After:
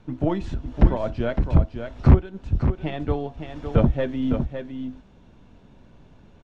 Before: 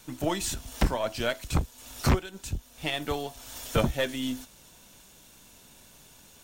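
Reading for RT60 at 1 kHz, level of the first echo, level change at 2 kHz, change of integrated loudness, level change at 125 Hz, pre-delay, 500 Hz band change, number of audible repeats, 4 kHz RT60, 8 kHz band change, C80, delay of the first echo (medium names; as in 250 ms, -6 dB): no reverb, -7.5 dB, -4.0 dB, +6.5 dB, +10.5 dB, no reverb, +4.5 dB, 1, no reverb, under -20 dB, no reverb, 559 ms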